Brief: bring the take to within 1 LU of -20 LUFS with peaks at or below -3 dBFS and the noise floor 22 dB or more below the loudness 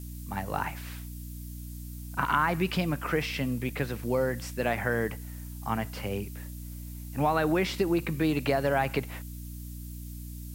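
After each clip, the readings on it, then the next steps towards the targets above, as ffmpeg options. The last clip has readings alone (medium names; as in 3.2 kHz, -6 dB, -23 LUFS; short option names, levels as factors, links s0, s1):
hum 60 Hz; highest harmonic 300 Hz; hum level -38 dBFS; noise floor -40 dBFS; noise floor target -52 dBFS; loudness -29.5 LUFS; peak level -10.5 dBFS; loudness target -20.0 LUFS
-> -af "bandreject=f=60:t=h:w=6,bandreject=f=120:t=h:w=6,bandreject=f=180:t=h:w=6,bandreject=f=240:t=h:w=6,bandreject=f=300:t=h:w=6"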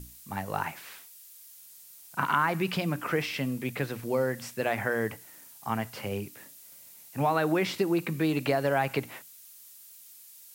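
hum not found; noise floor -51 dBFS; noise floor target -52 dBFS
-> -af "afftdn=nr=6:nf=-51"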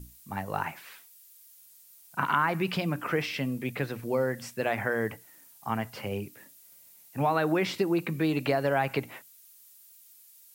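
noise floor -56 dBFS; loudness -30.0 LUFS; peak level -10.5 dBFS; loudness target -20.0 LUFS
-> -af "volume=3.16,alimiter=limit=0.708:level=0:latency=1"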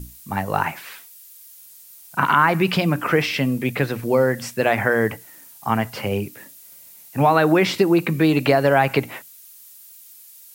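loudness -20.0 LUFS; peak level -3.0 dBFS; noise floor -46 dBFS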